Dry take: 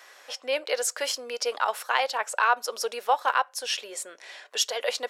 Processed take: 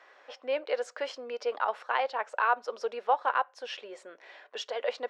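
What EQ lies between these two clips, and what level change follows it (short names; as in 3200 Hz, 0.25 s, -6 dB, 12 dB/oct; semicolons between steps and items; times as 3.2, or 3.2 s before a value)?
tape spacing loss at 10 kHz 33 dB; 0.0 dB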